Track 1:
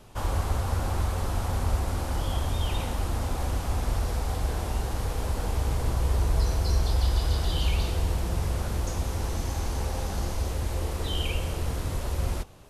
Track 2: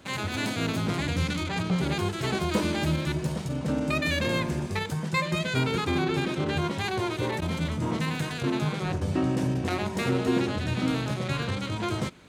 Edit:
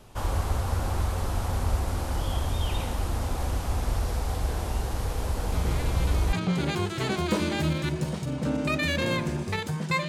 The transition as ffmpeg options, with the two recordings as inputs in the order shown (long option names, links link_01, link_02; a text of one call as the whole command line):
ffmpeg -i cue0.wav -i cue1.wav -filter_complex "[1:a]asplit=2[link_01][link_02];[0:a]apad=whole_dur=10.08,atrim=end=10.08,atrim=end=6.332[link_03];[link_02]atrim=start=1.558:end=5.31[link_04];[link_01]atrim=start=0.75:end=1.56,asetpts=PTS-STARTPTS,volume=-8dB,afade=type=in:duration=0.004:curve=hsin,afade=type=out:start_time=0.806:duration=0.004:curve=hsin,adelay=5520[link_05];[link_03][link_04]acrossfade=duration=0.004:curve1=hsin:curve2=hsin[link_06];[link_06][link_05]amix=inputs=2:normalize=0" out.wav